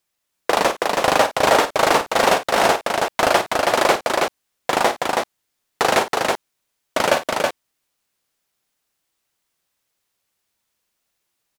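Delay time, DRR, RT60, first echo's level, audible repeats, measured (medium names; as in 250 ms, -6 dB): 52 ms, no reverb, no reverb, -11.5 dB, 2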